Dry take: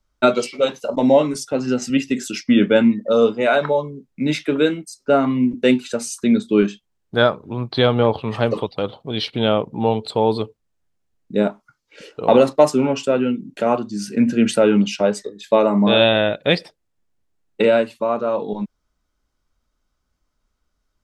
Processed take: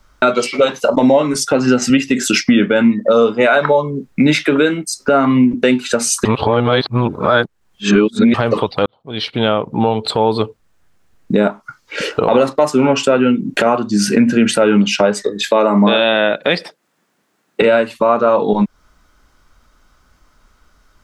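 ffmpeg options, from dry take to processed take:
-filter_complex "[0:a]asettb=1/sr,asplit=3[a][b][c];[a]atrim=end=15.414[d];[b]atrim=start=15.41:end=17.62,asetpts=PTS-STARTPTS,afade=t=in:d=0.004:c=qsin,afade=t=out:st=2.206:d=0.004:c=qsin,highpass=f=170:w=0.5412,highpass=f=170:w=1.3066[e];[c]atrim=start=17.616[f];[d][e]acrossfade=d=0.004:c1=hsin:c2=qsin[g];[g][f]acrossfade=d=0.004:c1=qsin:c2=hsin,asplit=4[h][i][j][k];[h]atrim=end=6.252[l];[i]atrim=start=6.248:end=8.342,asetpts=PTS-STARTPTS,areverse[m];[j]atrim=start=8.338:end=8.86,asetpts=PTS-STARTPTS,afade=t=out:st=0.518:d=0.004:c=hsin[n];[k]atrim=start=8.86,asetpts=PTS-STARTPTS,afade=t=in:d=2.53[o];[l][m]acrossfade=d=0.004:c1=hsin:c2=hsin[p];[n][o]concat=n=2:v=0:a=1[q];[p][q]acrossfade=d=0.004:c1=hsin:c2=hsin,equalizer=f=1.4k:t=o:w=1.5:g=6,acompressor=threshold=-29dB:ratio=4,alimiter=level_in=19dB:limit=-1dB:release=50:level=0:latency=1,volume=-1dB"

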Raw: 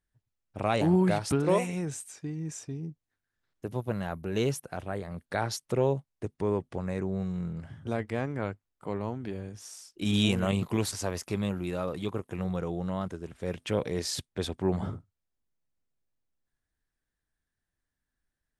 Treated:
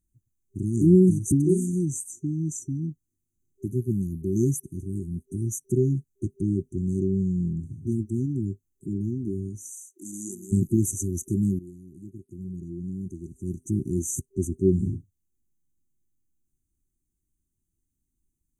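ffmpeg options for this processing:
-filter_complex "[0:a]asplit=3[a][b][c];[a]afade=t=out:st=9.7:d=0.02[d];[b]highpass=680,afade=t=in:st=9.7:d=0.02,afade=t=out:st=10.51:d=0.02[e];[c]afade=t=in:st=10.51:d=0.02[f];[d][e][f]amix=inputs=3:normalize=0,asplit=2[g][h];[g]atrim=end=11.59,asetpts=PTS-STARTPTS,afade=t=out:st=11.586:d=0.004:c=hsin:silence=0.149624[i];[h]atrim=start=11.59,asetpts=PTS-STARTPTS,afade=t=in:d=2.26:c=qua:silence=0.149624[j];[i][j]concat=n=2:v=0:a=1,afftfilt=real='re*(1-between(b*sr/4096,390,5900))':imag='im*(1-between(b*sr/4096,390,5900))':win_size=4096:overlap=0.75,volume=7.5dB"

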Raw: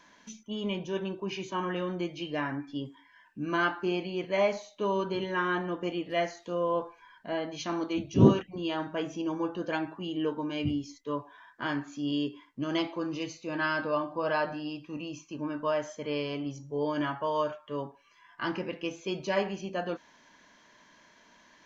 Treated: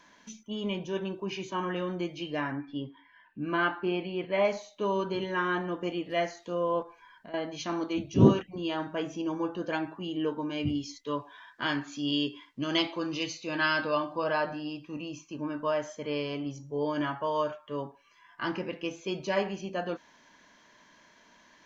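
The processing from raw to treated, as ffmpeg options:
-filter_complex "[0:a]asettb=1/sr,asplit=3[a][b][c];[a]atrim=end=2.524[d];[b]atrim=start=2.52:end=4.45,asetpts=PTS-STARTPTS,afade=t=in:d=0.004:c=qsin,afade=t=out:st=1.926:d=0.004:c=qsin,lowpass=f=3.8k:w=0.5412,lowpass=f=3.8k:w=1.3066[e];[c]atrim=start=4.446[f];[d][e]acrossfade=d=0.004:c1=hsin:c2=qsin[g];[g][f]acrossfade=d=0.004:c1=qsin:c2=hsin,asettb=1/sr,asplit=3[h][i][j];[h]atrim=end=6.824[k];[i]atrim=start=6.82:end=7.34,asetpts=PTS-STARTPTS,afade=t=in:d=0.004:c=qsin,afade=t=out:st=0.516:d=0.004:c=qsin,acompressor=threshold=-43dB:ratio=6:attack=3.2:release=140:knee=1:detection=peak[l];[j]atrim=start=7.336[m];[k][l]acrossfade=d=0.004:c1=hsin:c2=qsin[n];[n][m]acrossfade=d=0.004:c1=qsin:c2=hsin,asettb=1/sr,asplit=3[o][p][q];[o]atrim=end=10.754[r];[p]atrim=start=10.75:end=14.24,asetpts=PTS-STARTPTS,afade=t=in:d=0.004:c=qsin,afade=t=out:st=3.486:d=0.004:c=qsin,equalizer=f=3.8k:w=0.68:g=8.5[s];[q]atrim=start=14.236[t];[r][s]acrossfade=d=0.004:c1=hsin:c2=qsin[u];[u][t]acrossfade=d=0.004:c1=qsin:c2=hsin"

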